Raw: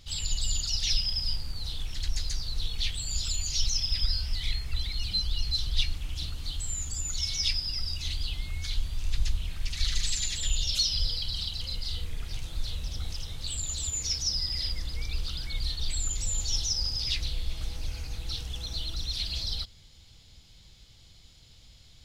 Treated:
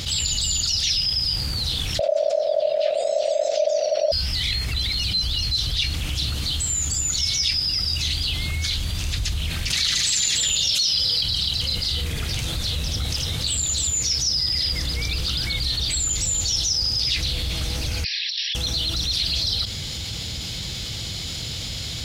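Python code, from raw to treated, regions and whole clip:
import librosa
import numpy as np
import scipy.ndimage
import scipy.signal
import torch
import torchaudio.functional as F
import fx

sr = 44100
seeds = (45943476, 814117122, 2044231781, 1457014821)

y = fx.chain(x, sr, fx.cheby1_lowpass(hz=9500.0, order=2),
    fx.bass_treble(bass_db=7, treble_db=-13),
    fx.ring_mod(carrier_hz=610.0), at=(1.99, 4.12))
y = fx.chain(y, sr, fx.highpass(hz=230.0, slope=6),
    fx.env_flatten(amount_pct=50), at=(9.7, 11.21))
y = fx.chain(y, sr, fx.brickwall_bandpass(low_hz=1600.0, high_hz=5800.0),
    fx.over_compress(threshold_db=-42.0, ratio=-0.5), at=(18.04, 18.55))
y = scipy.signal.sosfilt(scipy.signal.butter(2, 78.0, 'highpass', fs=sr, output='sos'), y)
y = fx.peak_eq(y, sr, hz=960.0, db=-3.5, octaves=0.82)
y = fx.env_flatten(y, sr, amount_pct=70)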